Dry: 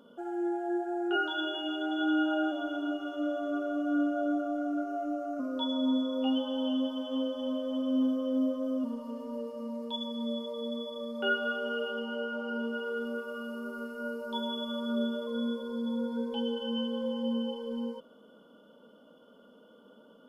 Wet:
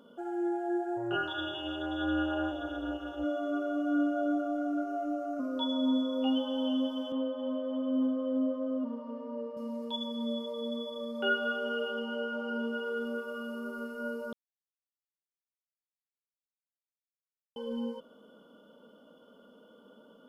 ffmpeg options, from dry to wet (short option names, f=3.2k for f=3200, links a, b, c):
-filter_complex "[0:a]asplit=3[a][b][c];[a]afade=t=out:st=0.96:d=0.02[d];[b]tremolo=f=230:d=0.621,afade=t=in:st=0.96:d=0.02,afade=t=out:st=3.23:d=0.02[e];[c]afade=t=in:st=3.23:d=0.02[f];[d][e][f]amix=inputs=3:normalize=0,asettb=1/sr,asplit=3[g][h][i];[g]atrim=end=7.124[j];[h]atrim=start=7.12:end=9.57,asetpts=PTS-STARTPTS,afade=t=in:d=0.004:c=qsin,afade=t=out:st=2.446:d=0.004:c=qsin,highpass=210,lowpass=2.2k[k];[i]atrim=start=9.566[l];[j][k]acrossfade=d=0.004:c1=hsin:c2=qsin[m];[m][l]acrossfade=d=0.004:c1=qsin:c2=hsin,asplit=3[n][o][p];[n]atrim=end=14.33,asetpts=PTS-STARTPTS,afade=t=out:st=14.326:d=0.004:c=hsin[q];[o]atrim=start=14.33:end=17.56,asetpts=PTS-STARTPTS,volume=0[r];[p]atrim=start=17.56,asetpts=PTS-STARTPTS,afade=t=in:d=0.004:c=hsin[s];[q][r][s]concat=n=3:v=0:a=1"